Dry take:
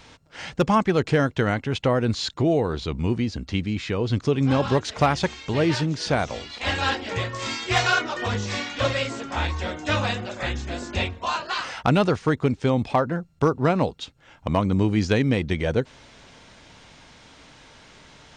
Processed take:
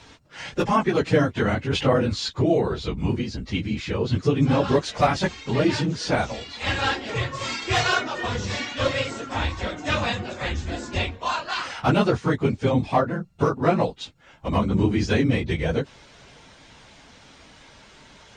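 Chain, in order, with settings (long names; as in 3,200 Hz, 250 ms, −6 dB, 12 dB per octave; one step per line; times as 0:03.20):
random phases in long frames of 50 ms
0:01.68–0:02.10: level that may fall only so fast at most 51 dB per second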